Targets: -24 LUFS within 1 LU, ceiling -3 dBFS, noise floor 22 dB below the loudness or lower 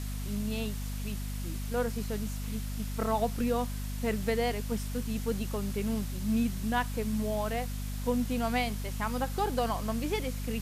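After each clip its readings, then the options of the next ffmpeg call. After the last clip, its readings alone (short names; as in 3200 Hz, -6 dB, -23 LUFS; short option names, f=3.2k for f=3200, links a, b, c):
hum 50 Hz; harmonics up to 250 Hz; hum level -33 dBFS; noise floor -35 dBFS; noise floor target -55 dBFS; loudness -32.5 LUFS; peak -15.5 dBFS; loudness target -24.0 LUFS
-> -af "bandreject=f=50:t=h:w=4,bandreject=f=100:t=h:w=4,bandreject=f=150:t=h:w=4,bandreject=f=200:t=h:w=4,bandreject=f=250:t=h:w=4"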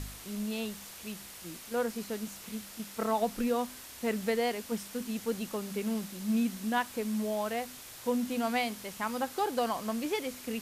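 hum none; noise floor -48 dBFS; noise floor target -56 dBFS
-> -af "afftdn=nr=8:nf=-48"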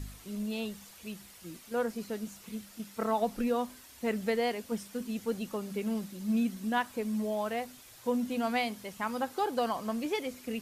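noise floor -54 dBFS; noise floor target -56 dBFS
-> -af "afftdn=nr=6:nf=-54"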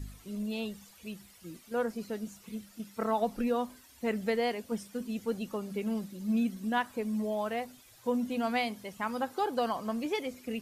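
noise floor -58 dBFS; loudness -34.0 LUFS; peak -17.0 dBFS; loudness target -24.0 LUFS
-> -af "volume=10dB"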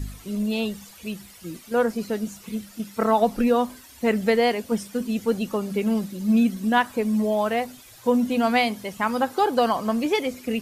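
loudness -24.0 LUFS; peak -7.0 dBFS; noise floor -48 dBFS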